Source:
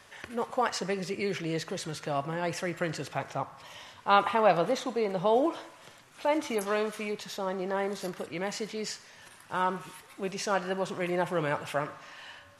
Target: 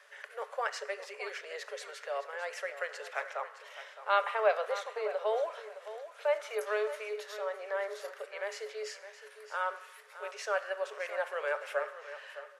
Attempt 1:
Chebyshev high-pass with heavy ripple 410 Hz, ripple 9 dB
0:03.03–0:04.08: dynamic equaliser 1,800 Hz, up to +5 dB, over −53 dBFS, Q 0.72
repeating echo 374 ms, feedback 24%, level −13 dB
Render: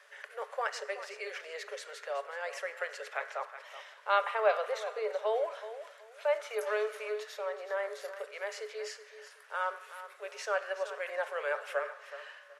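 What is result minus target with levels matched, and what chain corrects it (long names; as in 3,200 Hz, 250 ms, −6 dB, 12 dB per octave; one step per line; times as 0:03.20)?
echo 240 ms early
Chebyshev high-pass with heavy ripple 410 Hz, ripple 9 dB
0:03.03–0:04.08: dynamic equaliser 1,800 Hz, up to +5 dB, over −53 dBFS, Q 0.72
repeating echo 614 ms, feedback 24%, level −13 dB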